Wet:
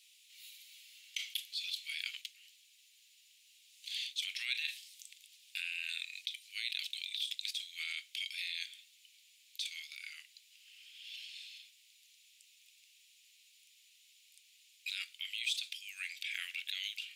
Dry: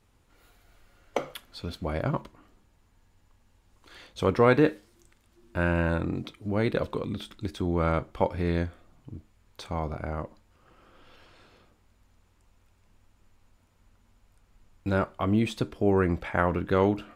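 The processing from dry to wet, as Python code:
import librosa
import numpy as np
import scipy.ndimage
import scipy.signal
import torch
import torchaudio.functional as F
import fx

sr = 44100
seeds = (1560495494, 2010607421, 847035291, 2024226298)

p1 = scipy.signal.sosfilt(scipy.signal.butter(8, 2400.0, 'highpass', fs=sr, output='sos'), x)
p2 = fx.peak_eq(p1, sr, hz=3600.0, db=4.0, octaves=0.62)
p3 = fx.over_compress(p2, sr, threshold_db=-50.0, ratio=-0.5)
p4 = p2 + F.gain(torch.from_numpy(p3), 2.0).numpy()
y = F.gain(torch.from_numpy(p4), 1.5).numpy()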